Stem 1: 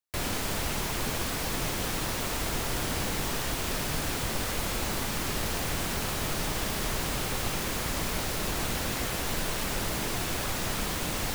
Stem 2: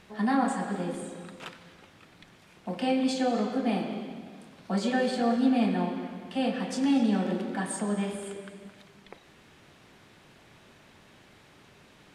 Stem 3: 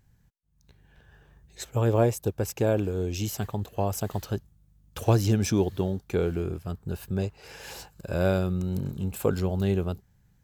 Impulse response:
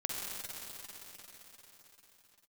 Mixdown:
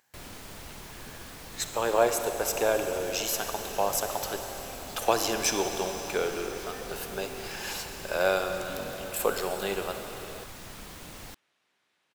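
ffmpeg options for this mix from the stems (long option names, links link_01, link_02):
-filter_complex "[0:a]volume=-13dB[link_01];[1:a]highpass=frequency=1100:poles=1,adelay=1800,volume=-15dB[link_02];[2:a]highpass=700,volume=2.5dB,asplit=2[link_03][link_04];[link_04]volume=-4.5dB[link_05];[3:a]atrim=start_sample=2205[link_06];[link_05][link_06]afir=irnorm=-1:irlink=0[link_07];[link_01][link_02][link_03][link_07]amix=inputs=4:normalize=0"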